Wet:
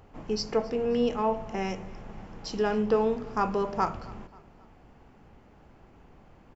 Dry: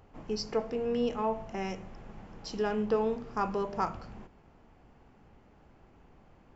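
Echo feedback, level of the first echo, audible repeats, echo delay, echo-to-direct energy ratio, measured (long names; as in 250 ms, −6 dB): 46%, −22.0 dB, 2, 267 ms, −21.0 dB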